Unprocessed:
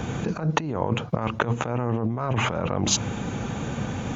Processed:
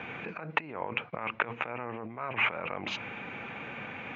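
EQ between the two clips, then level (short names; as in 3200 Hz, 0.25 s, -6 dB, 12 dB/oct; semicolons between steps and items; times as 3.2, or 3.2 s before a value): HPF 640 Hz 6 dB/oct; ladder low-pass 2600 Hz, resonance 65%; +4.5 dB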